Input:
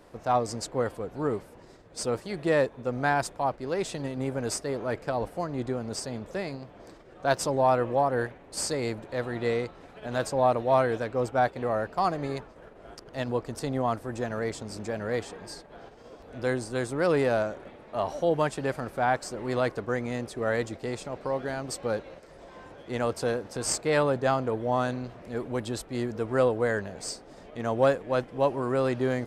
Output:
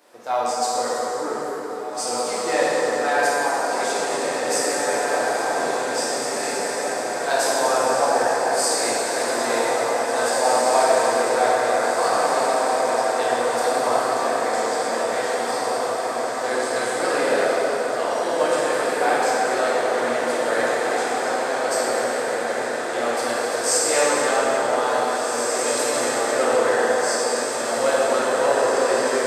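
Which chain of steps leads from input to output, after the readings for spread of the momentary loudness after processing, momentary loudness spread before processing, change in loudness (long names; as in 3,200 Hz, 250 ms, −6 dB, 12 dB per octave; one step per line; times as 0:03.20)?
5 LU, 13 LU, +8.0 dB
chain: high-pass filter 320 Hz 12 dB per octave
spectral tilt +2 dB per octave
feedback delay with all-pass diffusion 1,950 ms, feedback 63%, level −3 dB
dense smooth reverb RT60 4.6 s, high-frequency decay 0.6×, DRR −8.5 dB
level −2 dB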